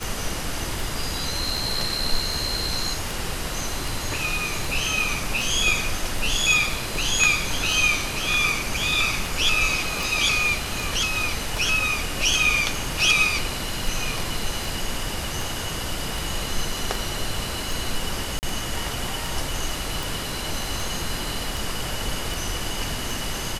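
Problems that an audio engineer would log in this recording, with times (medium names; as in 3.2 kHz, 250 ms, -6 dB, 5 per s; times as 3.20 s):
tick 78 rpm
18.39–18.43 s: dropout 39 ms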